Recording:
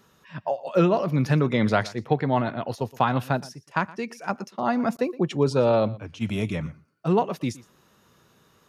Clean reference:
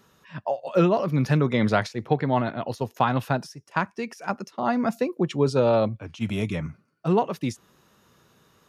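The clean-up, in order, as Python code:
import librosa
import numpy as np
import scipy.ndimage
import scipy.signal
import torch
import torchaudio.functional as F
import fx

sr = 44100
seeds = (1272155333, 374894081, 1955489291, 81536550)

y = fx.fix_interpolate(x, sr, at_s=(4.97,), length_ms=15.0)
y = fx.fix_echo_inverse(y, sr, delay_ms=118, level_db=-20.5)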